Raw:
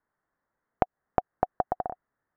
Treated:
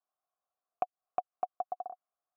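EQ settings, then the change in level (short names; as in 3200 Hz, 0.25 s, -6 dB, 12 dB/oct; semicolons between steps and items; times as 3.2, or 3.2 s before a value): dynamic EQ 620 Hz, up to -6 dB, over -39 dBFS, Q 0.92; vowel filter a; 0.0 dB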